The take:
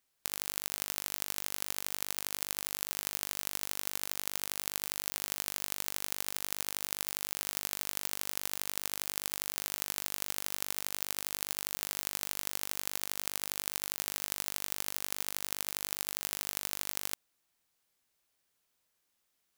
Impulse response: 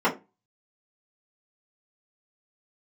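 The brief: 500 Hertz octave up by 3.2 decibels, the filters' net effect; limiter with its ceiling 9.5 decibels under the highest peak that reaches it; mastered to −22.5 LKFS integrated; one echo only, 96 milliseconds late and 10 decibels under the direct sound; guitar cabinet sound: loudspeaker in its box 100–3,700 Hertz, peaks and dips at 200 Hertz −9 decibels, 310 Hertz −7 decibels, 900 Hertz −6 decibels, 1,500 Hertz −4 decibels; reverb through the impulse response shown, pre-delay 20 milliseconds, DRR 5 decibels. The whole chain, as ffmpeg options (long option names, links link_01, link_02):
-filter_complex "[0:a]equalizer=frequency=500:width_type=o:gain=5.5,alimiter=limit=-14.5dB:level=0:latency=1,aecho=1:1:96:0.316,asplit=2[link_01][link_02];[1:a]atrim=start_sample=2205,adelay=20[link_03];[link_02][link_03]afir=irnorm=-1:irlink=0,volume=-21.5dB[link_04];[link_01][link_04]amix=inputs=2:normalize=0,highpass=100,equalizer=frequency=200:width_type=q:width=4:gain=-9,equalizer=frequency=310:width_type=q:width=4:gain=-7,equalizer=frequency=900:width_type=q:width=4:gain=-6,equalizer=frequency=1500:width_type=q:width=4:gain=-4,lowpass=frequency=3700:width=0.5412,lowpass=frequency=3700:width=1.3066,volume=27dB"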